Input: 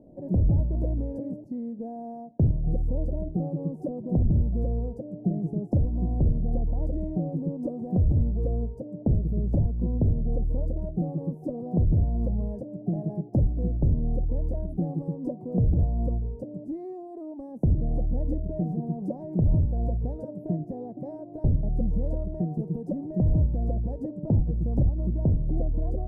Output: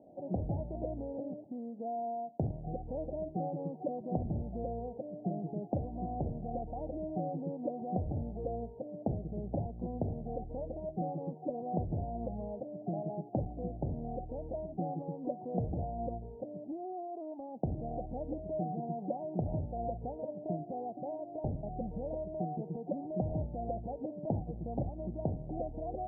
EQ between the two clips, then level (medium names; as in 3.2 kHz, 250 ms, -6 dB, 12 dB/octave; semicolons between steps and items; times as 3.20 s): high-pass 190 Hz 6 dB/octave; resonant low-pass 770 Hz, resonance Q 5.3; -7.5 dB